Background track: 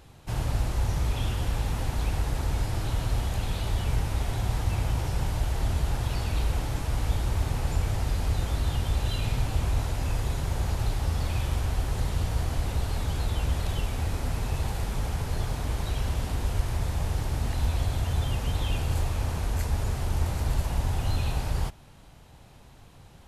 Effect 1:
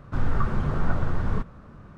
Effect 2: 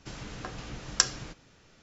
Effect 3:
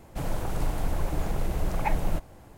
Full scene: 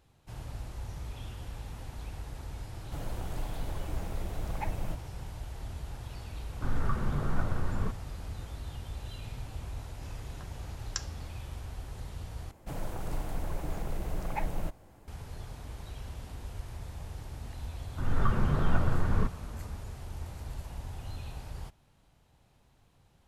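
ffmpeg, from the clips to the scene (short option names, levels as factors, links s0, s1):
-filter_complex "[3:a]asplit=2[s0][s1];[1:a]asplit=2[s2][s3];[0:a]volume=0.211[s4];[s3]dynaudnorm=f=180:g=3:m=2.82[s5];[s4]asplit=2[s6][s7];[s6]atrim=end=12.514[s8];[s1]atrim=end=2.57,asetpts=PTS-STARTPTS,volume=0.473[s9];[s7]atrim=start=15.076[s10];[s0]atrim=end=2.57,asetpts=PTS-STARTPTS,volume=0.355,afade=t=in:d=0.004:c=hsin,afade=t=out:st=2.566:d=0.004:c=hsin,adelay=2760[s11];[s2]atrim=end=1.97,asetpts=PTS-STARTPTS,volume=0.501,afade=t=in:d=0.004:c=hsin,afade=t=out:st=1.966:d=0.004:c=hsin,adelay=6490[s12];[2:a]atrim=end=1.82,asetpts=PTS-STARTPTS,volume=0.224,afade=t=in:d=0.004:c=hsin,afade=t=out:st=1.816:d=0.004:c=hsin,adelay=9960[s13];[s5]atrim=end=1.97,asetpts=PTS-STARTPTS,volume=0.335,afade=t=in:d=0.004:c=hsin,afade=t=out:st=1.966:d=0.004:c=hsin,adelay=17850[s14];[s8][s9]acrossfade=d=0.004:c1=hsin:c2=hsin[s15];[s15][s10]acrossfade=d=0.004:c1=hsin:c2=hsin[s16];[s16][s11][s12][s13][s14]amix=inputs=5:normalize=0"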